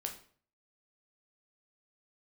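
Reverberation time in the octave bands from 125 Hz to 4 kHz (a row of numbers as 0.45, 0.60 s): 0.60, 0.55, 0.50, 0.45, 0.45, 0.40 s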